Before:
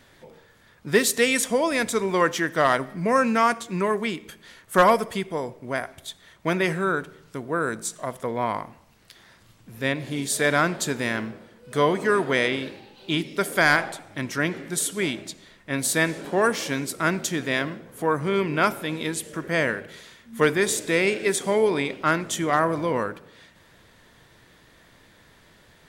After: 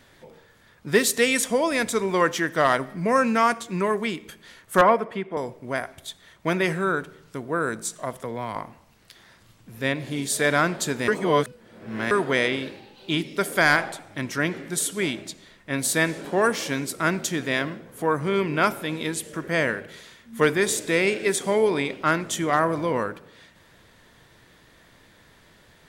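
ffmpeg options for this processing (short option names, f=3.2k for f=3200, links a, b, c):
-filter_complex "[0:a]asettb=1/sr,asplit=3[a][b][c];[a]atrim=end=4.814[d];[b]atrim=start=4.81:end=5.37,asetpts=PTS-STARTPTS,afade=t=in:d=0.004:c=qsin,afade=t=out:st=0.556:d=0.004:c=qsin,acrossover=split=160 2800:gain=0.178 1 0.0891[e][f][g];[e][f][g]amix=inputs=3:normalize=0[h];[c]atrim=start=5.366[i];[d][h]acrossfade=d=0.004:c1=hsin:c2=qsin[j];[j][i]acrossfade=d=0.004:c1=qsin:c2=hsin,asettb=1/sr,asplit=3[k][l][m];[k]atrim=end=8.134[n];[l]atrim=start=8.13:end=8.56,asetpts=PTS-STARTPTS,afade=t=in:d=0.004:c=qsin,afade=t=out:st=0.426:d=0.004:c=qsin,acrossover=split=160|3000[o][p][q];[p]acompressor=threshold=-31dB:ratio=2:attack=3.2:release=140:knee=2.83:detection=peak[r];[o][r][q]amix=inputs=3:normalize=0[s];[m]atrim=start=8.556[t];[n][s]acrossfade=d=0.004:c1=hsin:c2=qsin[u];[u][t]acrossfade=d=0.004:c1=qsin:c2=hsin,asplit=3[v][w][x];[v]atrim=end=11.082[y];[w]atrim=start=11.078:end=12.112,asetpts=PTS-STARTPTS,areverse[z];[x]atrim=start=12.108[aa];[y][z]acrossfade=d=0.004:c1=hsin:c2=hsin[ab];[ab][aa]acrossfade=d=0.004:c1=hsin:c2=hsin"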